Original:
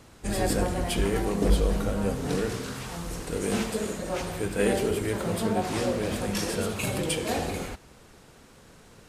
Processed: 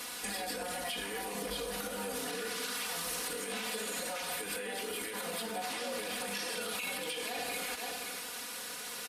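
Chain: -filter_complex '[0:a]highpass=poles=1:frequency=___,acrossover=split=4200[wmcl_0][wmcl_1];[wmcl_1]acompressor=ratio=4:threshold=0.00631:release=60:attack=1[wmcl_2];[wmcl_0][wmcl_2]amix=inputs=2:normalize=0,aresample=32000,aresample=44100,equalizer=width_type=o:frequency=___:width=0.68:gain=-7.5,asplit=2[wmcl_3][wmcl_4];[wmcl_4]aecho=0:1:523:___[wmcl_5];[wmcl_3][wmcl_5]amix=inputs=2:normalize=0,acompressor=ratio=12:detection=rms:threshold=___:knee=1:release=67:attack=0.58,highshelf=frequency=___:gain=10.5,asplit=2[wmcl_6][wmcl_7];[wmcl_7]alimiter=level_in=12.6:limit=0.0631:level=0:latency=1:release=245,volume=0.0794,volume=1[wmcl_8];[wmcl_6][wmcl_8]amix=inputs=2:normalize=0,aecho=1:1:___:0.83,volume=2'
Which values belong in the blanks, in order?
1400, 7000, 0.1, 0.00501, 4200, 4.1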